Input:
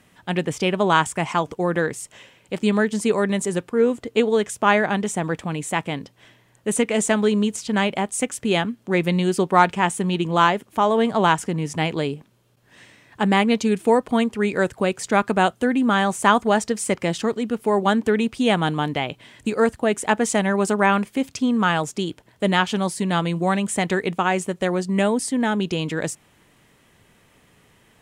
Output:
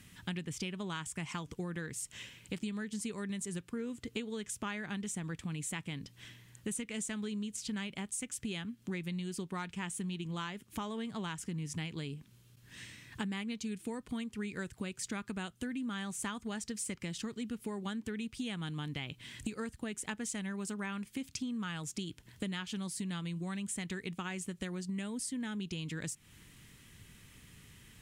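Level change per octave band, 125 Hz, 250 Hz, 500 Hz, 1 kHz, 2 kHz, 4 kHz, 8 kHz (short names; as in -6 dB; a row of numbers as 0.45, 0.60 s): -14.0, -16.0, -24.5, -25.5, -19.0, -14.5, -10.5 dB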